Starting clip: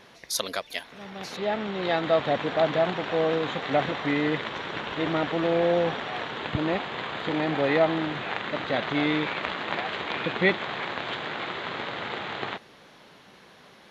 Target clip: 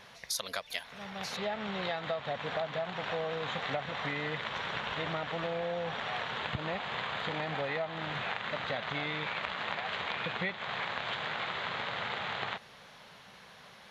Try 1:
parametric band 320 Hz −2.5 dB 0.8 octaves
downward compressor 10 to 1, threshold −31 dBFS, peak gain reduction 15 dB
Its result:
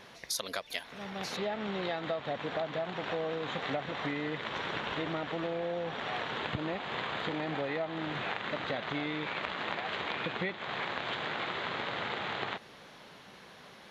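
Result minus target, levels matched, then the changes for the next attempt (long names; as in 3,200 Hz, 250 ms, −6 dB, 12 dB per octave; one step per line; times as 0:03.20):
250 Hz band +4.5 dB
change: parametric band 320 Hz −13.5 dB 0.8 octaves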